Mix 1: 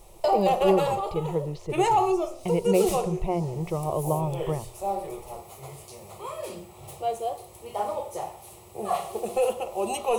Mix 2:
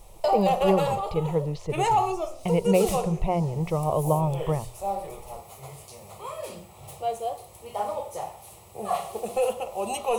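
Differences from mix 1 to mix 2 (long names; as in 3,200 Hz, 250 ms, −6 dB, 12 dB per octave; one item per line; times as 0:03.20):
speech +3.5 dB
master: add parametric band 360 Hz −9.5 dB 0.25 octaves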